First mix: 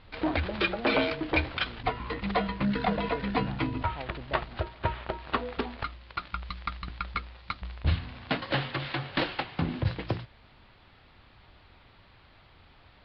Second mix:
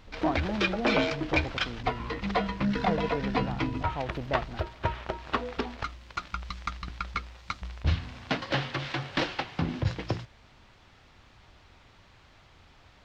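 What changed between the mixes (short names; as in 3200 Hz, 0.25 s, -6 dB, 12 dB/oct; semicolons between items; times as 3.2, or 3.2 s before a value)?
speech +7.0 dB; master: remove steep low-pass 4800 Hz 72 dB/oct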